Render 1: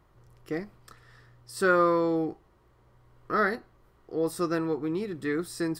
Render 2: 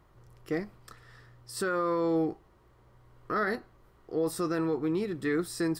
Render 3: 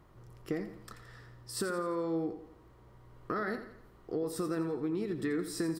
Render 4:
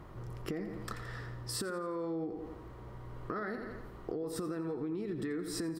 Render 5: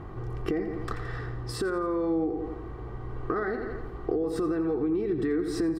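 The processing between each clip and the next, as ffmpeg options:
ffmpeg -i in.wav -af "alimiter=limit=-21.5dB:level=0:latency=1:release=15,volume=1dB" out.wav
ffmpeg -i in.wav -filter_complex "[0:a]equalizer=frequency=230:width_type=o:width=2.1:gain=4,acompressor=threshold=-31dB:ratio=6,asplit=2[link_01][link_02];[link_02]aecho=0:1:85|170|255|340|425:0.282|0.127|0.0571|0.0257|0.0116[link_03];[link_01][link_03]amix=inputs=2:normalize=0" out.wav
ffmpeg -i in.wav -af "highshelf=frequency=3700:gain=-6.5,alimiter=level_in=8.5dB:limit=-24dB:level=0:latency=1:release=228,volume=-8.5dB,acompressor=threshold=-44dB:ratio=6,volume=10dB" out.wav
ffmpeg -i in.wav -af "lowpass=frequency=1900:poles=1,aecho=1:1:2.6:0.53,aeval=exprs='val(0)+0.00224*(sin(2*PI*50*n/s)+sin(2*PI*2*50*n/s)/2+sin(2*PI*3*50*n/s)/3+sin(2*PI*4*50*n/s)/4+sin(2*PI*5*50*n/s)/5)':channel_layout=same,volume=8dB" out.wav

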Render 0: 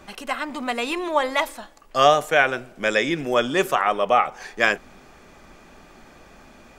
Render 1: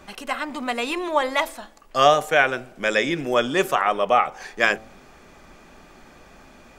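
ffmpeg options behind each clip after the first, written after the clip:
ffmpeg -i in.wav -af "bandreject=frequency=110:width_type=h:width=4,bandreject=frequency=220:width_type=h:width=4,bandreject=frequency=330:width_type=h:width=4,bandreject=frequency=440:width_type=h:width=4,bandreject=frequency=550:width_type=h:width=4,bandreject=frequency=660:width_type=h:width=4,bandreject=frequency=770:width_type=h:width=4" out.wav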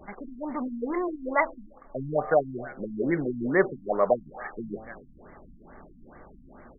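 ffmpeg -i in.wav -af "aecho=1:1:268|536:0.0631|0.0215,afftfilt=real='re*lt(b*sr/1024,270*pow(2300/270,0.5+0.5*sin(2*PI*2.3*pts/sr)))':imag='im*lt(b*sr/1024,270*pow(2300/270,0.5+0.5*sin(2*PI*2.3*pts/sr)))':win_size=1024:overlap=0.75" out.wav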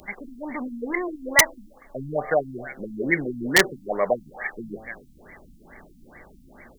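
ffmpeg -i in.wav -af "aexciter=amount=12.8:drive=3.7:freq=2000,aeval=exprs='(mod(1.88*val(0)+1,2)-1)/1.88':channel_layout=same" out.wav

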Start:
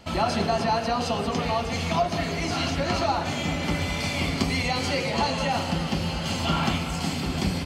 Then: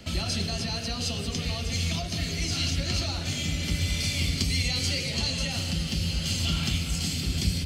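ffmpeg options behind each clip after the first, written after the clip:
ffmpeg -i in.wav -filter_complex "[0:a]equalizer=frequency=910:width=1.4:gain=-13.5,acrossover=split=120|3000[link_01][link_02][link_03];[link_02]acompressor=threshold=-50dB:ratio=2[link_04];[link_01][link_04][link_03]amix=inputs=3:normalize=0,volume=5dB" out.wav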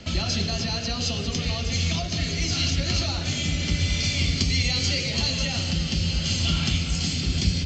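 ffmpeg -i in.wav -af "aresample=16000,aresample=44100,volume=3.5dB" out.wav

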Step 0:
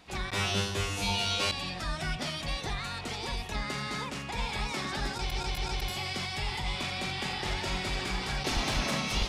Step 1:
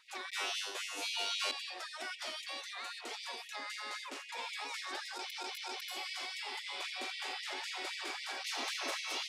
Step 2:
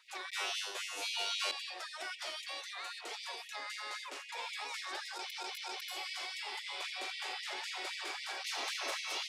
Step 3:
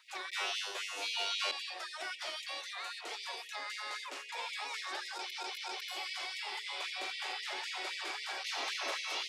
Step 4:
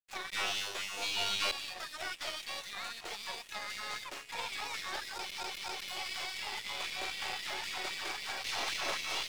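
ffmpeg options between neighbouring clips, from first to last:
ffmpeg -i in.wav -af "afftfilt=real='re*gte(b*sr/1024,240*pow(1900/240,0.5+0.5*sin(2*PI*3.8*pts/sr)))':imag='im*gte(b*sr/1024,240*pow(1900/240,0.5+0.5*sin(2*PI*3.8*pts/sr)))':win_size=1024:overlap=0.75,volume=-5.5dB" out.wav
ffmpeg -i in.wav -af "highpass=frequency=350:width=0.5412,highpass=frequency=350:width=1.3066" out.wav
ffmpeg -i in.wav -filter_complex "[0:a]acrossover=split=5800[link_01][link_02];[link_02]acompressor=threshold=-53dB:ratio=4:attack=1:release=60[link_03];[link_01][link_03]amix=inputs=2:normalize=0,bandreject=frequency=60:width_type=h:width=6,bandreject=frequency=120:width_type=h:width=6,bandreject=frequency=180:width_type=h:width=6,bandreject=frequency=240:width_type=h:width=6,bandreject=frequency=300:width_type=h:width=6,bandreject=frequency=360:width_type=h:width=6,bandreject=frequency=420:width_type=h:width=6,bandreject=frequency=480:width_type=h:width=6,bandreject=frequency=540:width_type=h:width=6,volume=1.5dB" out.wav
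ffmpeg -i in.wav -af "aeval=exprs='0.0794*(cos(1*acos(clip(val(0)/0.0794,-1,1)))-cos(1*PI/2))+0.00631*(cos(6*acos(clip(val(0)/0.0794,-1,1)))-cos(6*PI/2))':channel_layout=same,aeval=exprs='sgn(val(0))*max(abs(val(0))-0.00299,0)':channel_layout=same,volume=3dB" out.wav

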